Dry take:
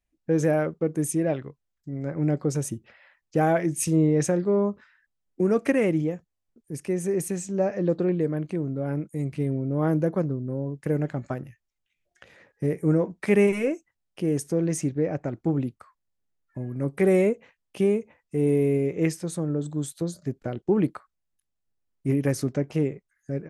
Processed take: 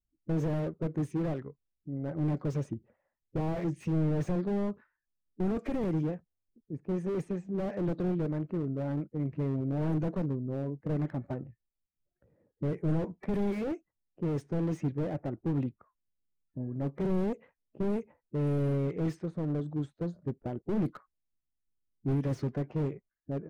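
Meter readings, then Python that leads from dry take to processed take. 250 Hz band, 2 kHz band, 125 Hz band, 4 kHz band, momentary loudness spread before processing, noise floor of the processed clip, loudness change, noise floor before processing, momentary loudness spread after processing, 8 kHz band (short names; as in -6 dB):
-6.5 dB, -13.5 dB, -4.0 dB, n/a, 12 LU, under -85 dBFS, -7.5 dB, -80 dBFS, 8 LU, under -20 dB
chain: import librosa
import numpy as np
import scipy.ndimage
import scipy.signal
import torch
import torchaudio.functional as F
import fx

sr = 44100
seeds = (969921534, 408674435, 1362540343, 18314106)

y = fx.spec_quant(x, sr, step_db=15)
y = fx.env_lowpass(y, sr, base_hz=320.0, full_db=-17.5)
y = fx.slew_limit(y, sr, full_power_hz=18.0)
y = y * 10.0 ** (-3.5 / 20.0)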